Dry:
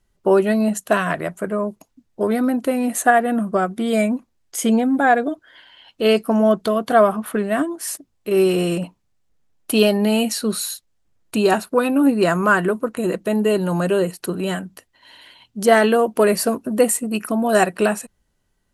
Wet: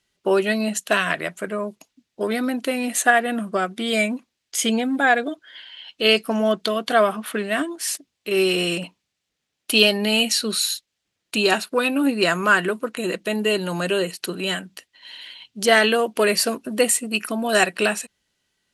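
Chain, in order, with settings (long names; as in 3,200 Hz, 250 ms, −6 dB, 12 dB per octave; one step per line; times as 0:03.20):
meter weighting curve D
level −3.5 dB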